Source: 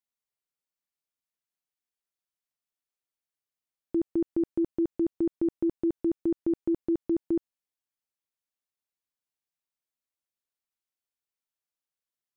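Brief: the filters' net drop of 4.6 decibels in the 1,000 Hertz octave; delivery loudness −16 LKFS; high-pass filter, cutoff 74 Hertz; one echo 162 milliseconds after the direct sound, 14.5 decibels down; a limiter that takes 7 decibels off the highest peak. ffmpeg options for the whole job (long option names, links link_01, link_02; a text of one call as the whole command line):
ffmpeg -i in.wav -af "highpass=74,equalizer=frequency=1000:width_type=o:gain=-6.5,alimiter=level_in=3.5dB:limit=-24dB:level=0:latency=1,volume=-3.5dB,aecho=1:1:162:0.188,volume=19.5dB" out.wav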